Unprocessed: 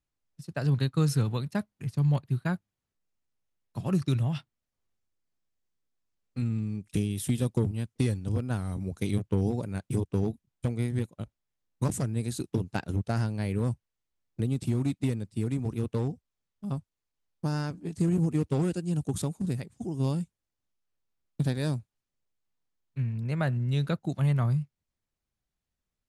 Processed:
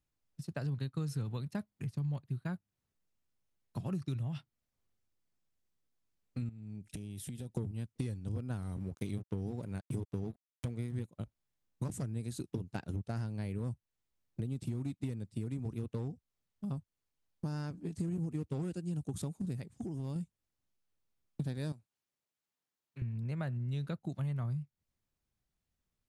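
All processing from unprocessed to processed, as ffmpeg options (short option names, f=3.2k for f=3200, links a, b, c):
-filter_complex "[0:a]asettb=1/sr,asplit=3[a][b][c];[a]atrim=end=6.494[d];[b]atrim=start=6.49:end=7.56,asetpts=PTS-STARTPTS,afade=t=in:d=0.004:c=qsin,afade=t=out:st=1.066:d=0.004:c=qsin,asuperstop=centerf=1100:order=12:qfactor=4.1,acompressor=threshold=-41dB:ratio=6:attack=3.2:release=140:knee=1:detection=peak[e];[c]atrim=start=7.556[f];[d][e]acrossfade=d=0.004:c1=hsin:c2=qsin[g];[g][f]acrossfade=d=0.004:c1=qsin:c2=hsin,asettb=1/sr,asplit=3[h][i][j];[h]atrim=end=8.634[k];[i]atrim=start=8.63:end=10.96,asetpts=PTS-STARTPTS,afade=t=in:d=0.004:c=qsin,afade=t=out:st=2.326:d=0.004:c=qsin,aeval=exprs='sgn(val(0))*max(abs(val(0))-0.00299,0)':c=same,acompressor=mode=upward:threshold=-39dB:ratio=2.5:attack=3.2:release=140:knee=2.83:detection=peak[l];[j]atrim=start=10.956[m];[k][l]acrossfade=d=0.004:c1=hsin:c2=qsin[n];[n][m]acrossfade=d=0.004:c1=qsin:c2=hsin,asettb=1/sr,asplit=3[o][p][q];[o]atrim=end=19.744[r];[p]atrim=start=19.74:end=20.16,asetpts=PTS-STARTPTS,afade=t=in:d=0.004:c=qsin,afade=t=out:st=0.416:d=0.004:c=qsin,acompressor=threshold=-32dB:ratio=12:attack=3.2:release=140:knee=1:detection=peak,volume=30.5dB,asoftclip=hard,volume=-30.5dB[s];[q]atrim=start=20.156[t];[r][s]acrossfade=d=0.004:c1=hsin:c2=qsin[u];[u][t]acrossfade=d=0.004:c1=qsin:c2=hsin,asettb=1/sr,asplit=3[v][w][x];[v]atrim=end=21.724[y];[w]atrim=start=21.72:end=23.02,asetpts=PTS-STARTPTS,afade=t=in:d=0.004:c=qsin,afade=t=out:st=1.296:d=0.004:c=qsin,highpass=f=420:p=1,acompressor=threshold=-54dB:ratio=1.5:attack=3.2:release=140:knee=1:detection=peak[z];[x]atrim=start=23.016[aa];[y][z]acrossfade=d=0.004:c1=hsin:c2=qsin[ab];[ab][aa]acrossfade=d=0.004:c1=qsin:c2=hsin,equalizer=f=120:t=o:w=2.9:g=3.5,acompressor=threshold=-37dB:ratio=3,volume=-1dB"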